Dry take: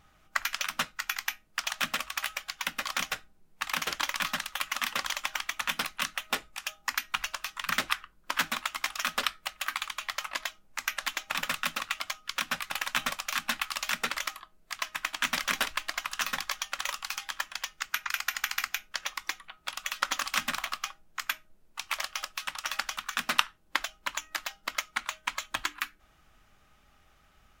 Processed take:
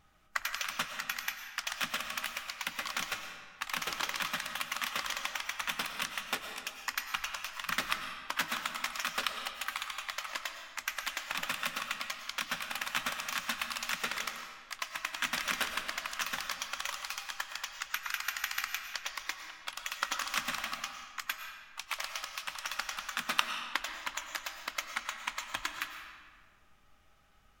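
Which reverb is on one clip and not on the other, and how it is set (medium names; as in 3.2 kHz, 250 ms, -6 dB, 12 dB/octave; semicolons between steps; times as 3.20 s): algorithmic reverb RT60 1.6 s, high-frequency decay 0.8×, pre-delay 70 ms, DRR 5.5 dB; trim -4.5 dB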